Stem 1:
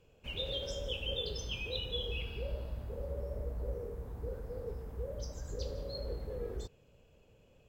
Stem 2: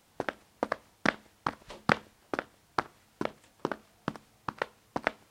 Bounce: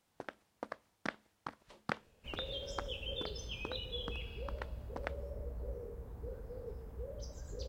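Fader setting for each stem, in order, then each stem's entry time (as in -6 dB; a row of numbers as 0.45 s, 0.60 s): -4.5 dB, -12.5 dB; 2.00 s, 0.00 s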